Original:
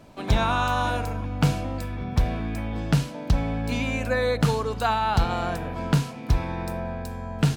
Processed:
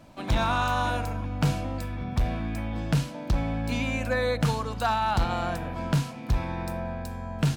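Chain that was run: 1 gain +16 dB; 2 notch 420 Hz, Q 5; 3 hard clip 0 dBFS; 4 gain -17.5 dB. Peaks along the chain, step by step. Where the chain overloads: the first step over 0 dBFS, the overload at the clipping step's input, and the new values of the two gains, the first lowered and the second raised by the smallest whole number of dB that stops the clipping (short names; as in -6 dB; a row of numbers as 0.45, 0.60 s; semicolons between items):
+6.5, +7.0, 0.0, -17.5 dBFS; step 1, 7.0 dB; step 1 +9 dB, step 4 -10.5 dB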